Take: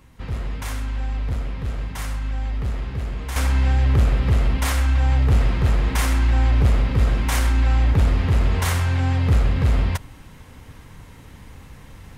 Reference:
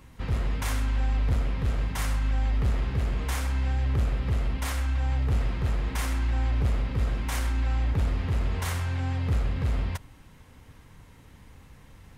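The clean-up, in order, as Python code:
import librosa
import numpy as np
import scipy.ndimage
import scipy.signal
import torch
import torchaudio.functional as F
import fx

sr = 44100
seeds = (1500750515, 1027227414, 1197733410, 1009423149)

y = fx.fix_level(x, sr, at_s=3.36, step_db=-8.5)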